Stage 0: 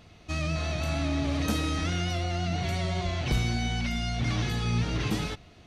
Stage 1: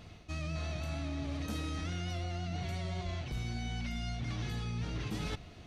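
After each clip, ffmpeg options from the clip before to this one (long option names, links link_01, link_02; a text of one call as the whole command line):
ffmpeg -i in.wav -af "lowshelf=frequency=180:gain=3.5,areverse,acompressor=threshold=-34dB:ratio=10,areverse" out.wav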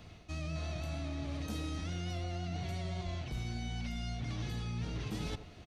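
ffmpeg -i in.wav -filter_complex "[0:a]acrossover=split=230|1100|2400[link_01][link_02][link_03][link_04];[link_02]aecho=1:1:80:0.355[link_05];[link_03]alimiter=level_in=26dB:limit=-24dB:level=0:latency=1,volume=-26dB[link_06];[link_01][link_05][link_06][link_04]amix=inputs=4:normalize=0,volume=-1dB" out.wav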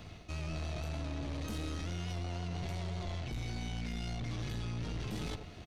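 ffmpeg -i in.wav -af "aeval=exprs='(tanh(100*val(0)+0.4)-tanh(0.4))/100':channel_layout=same,volume=5dB" out.wav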